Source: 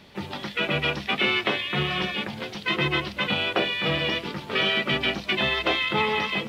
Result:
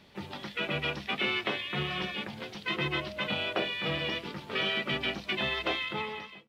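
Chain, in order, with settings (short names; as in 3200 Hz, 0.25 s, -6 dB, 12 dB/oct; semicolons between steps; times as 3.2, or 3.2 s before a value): ending faded out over 0.79 s; 2.96–3.66 whine 620 Hz -34 dBFS; gain -7 dB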